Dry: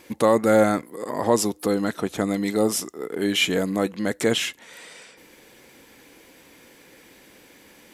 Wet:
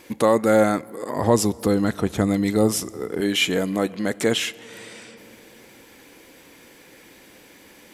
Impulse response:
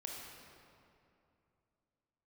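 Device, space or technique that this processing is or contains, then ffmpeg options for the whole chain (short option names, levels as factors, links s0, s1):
compressed reverb return: -filter_complex "[0:a]asplit=2[s0][s1];[1:a]atrim=start_sample=2205[s2];[s1][s2]afir=irnorm=-1:irlink=0,acompressor=threshold=0.0224:ratio=6,volume=0.447[s3];[s0][s3]amix=inputs=2:normalize=0,asettb=1/sr,asplit=3[s4][s5][s6];[s4]atrim=end=1.164[s7];[s5]atrim=start=1.16:end=3.21,asetpts=PTS-STARTPTS,afade=t=in:d=0.004:c=qsin,afade=t=out:st=2.046:d=0.004:c=qsin,equalizer=f=71:w=0.75:g=15[s8];[s6]atrim=start=3.206[s9];[s7][s8]acrossfade=d=0.004:c1=hsin:c2=qsin[s10];[s10][s9]acrossfade=d=0.004:c1=qsin:c2=hsin"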